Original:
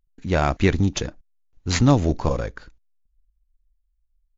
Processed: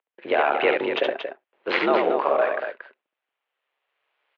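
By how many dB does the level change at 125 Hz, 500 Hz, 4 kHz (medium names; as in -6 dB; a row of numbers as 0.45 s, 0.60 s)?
under -30 dB, +5.0 dB, -0.5 dB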